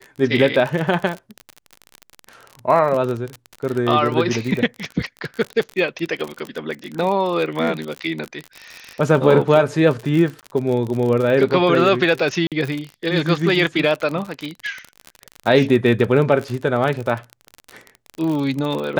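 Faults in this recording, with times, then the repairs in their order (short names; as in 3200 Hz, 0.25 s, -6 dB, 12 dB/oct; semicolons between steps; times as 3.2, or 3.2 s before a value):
crackle 43/s -23 dBFS
10.41–10.43 gap 18 ms
12.47–12.52 gap 47 ms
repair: de-click; interpolate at 10.41, 18 ms; interpolate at 12.47, 47 ms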